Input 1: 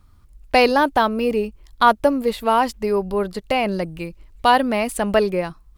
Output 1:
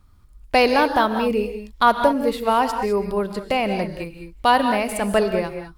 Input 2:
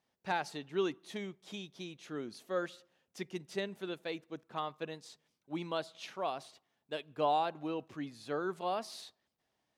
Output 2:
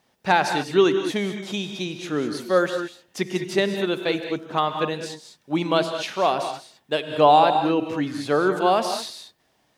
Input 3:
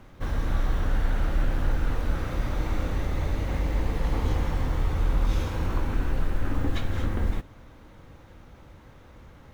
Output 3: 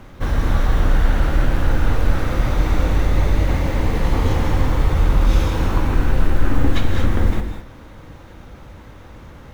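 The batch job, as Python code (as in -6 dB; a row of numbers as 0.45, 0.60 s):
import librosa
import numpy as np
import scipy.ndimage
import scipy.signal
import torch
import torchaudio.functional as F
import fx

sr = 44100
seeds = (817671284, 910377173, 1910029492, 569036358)

y = fx.rev_gated(x, sr, seeds[0], gate_ms=230, shape='rising', drr_db=7.0)
y = y * 10.0 ** (-3 / 20.0) / np.max(np.abs(y))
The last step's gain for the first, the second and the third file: -1.5, +15.5, +8.5 dB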